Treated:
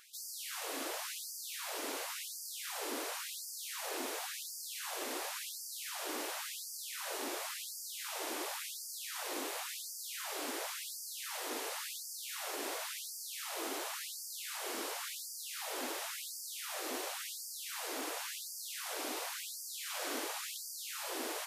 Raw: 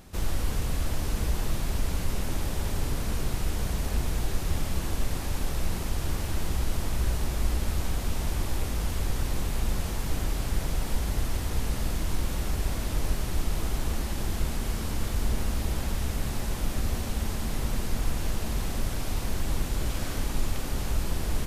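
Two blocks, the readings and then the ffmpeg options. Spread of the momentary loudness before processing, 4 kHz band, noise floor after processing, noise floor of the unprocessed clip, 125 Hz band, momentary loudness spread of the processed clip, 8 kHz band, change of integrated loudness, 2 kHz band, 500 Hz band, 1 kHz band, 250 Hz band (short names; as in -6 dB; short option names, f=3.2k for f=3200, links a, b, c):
2 LU, -1.5 dB, -46 dBFS, -32 dBFS, under -40 dB, 3 LU, -1.0 dB, -8.0 dB, -3.0 dB, -6.0 dB, -4.5 dB, -14.0 dB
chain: -af "afftfilt=real='re*gte(b*sr/1024,250*pow(4600/250,0.5+0.5*sin(2*PI*0.93*pts/sr)))':imag='im*gte(b*sr/1024,250*pow(4600/250,0.5+0.5*sin(2*PI*0.93*pts/sr)))':win_size=1024:overlap=0.75,volume=-1dB"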